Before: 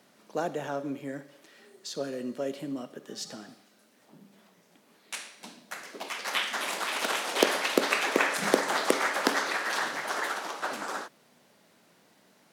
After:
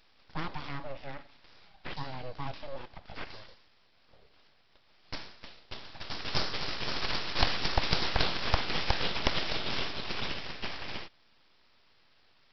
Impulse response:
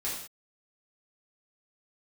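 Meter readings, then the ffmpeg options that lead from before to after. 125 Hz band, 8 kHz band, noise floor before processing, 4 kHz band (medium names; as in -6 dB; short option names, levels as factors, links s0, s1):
+9.5 dB, -16.0 dB, -63 dBFS, +1.0 dB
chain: -af "highpass=f=250:w=0.5412,highpass=f=250:w=1.3066,equalizer=f=710:t=o:w=2.8:g=-10,aresample=11025,aeval=exprs='abs(val(0))':c=same,aresample=44100,volume=2"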